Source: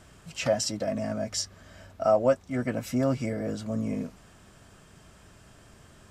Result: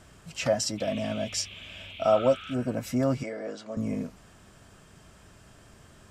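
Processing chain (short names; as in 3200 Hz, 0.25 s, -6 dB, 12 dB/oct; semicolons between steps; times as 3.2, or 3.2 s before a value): 3.23–3.77 BPF 400–5900 Hz; 2.12–2.7 spectral repair 1200–4000 Hz both; 0.77–2.53 band noise 2200–3500 Hz -45 dBFS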